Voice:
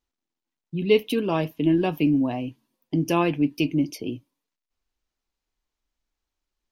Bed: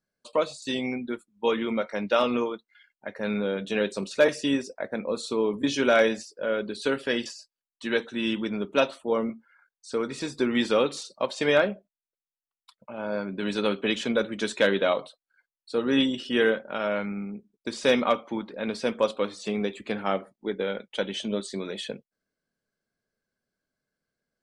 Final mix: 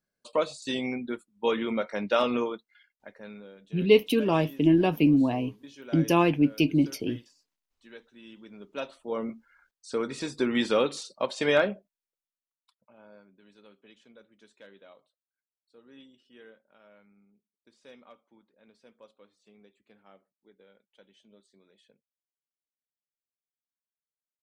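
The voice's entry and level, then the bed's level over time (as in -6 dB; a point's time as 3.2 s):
3.00 s, 0.0 dB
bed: 2.71 s -1.5 dB
3.56 s -22 dB
8.29 s -22 dB
9.41 s -1.5 dB
12.13 s -1.5 dB
13.45 s -30 dB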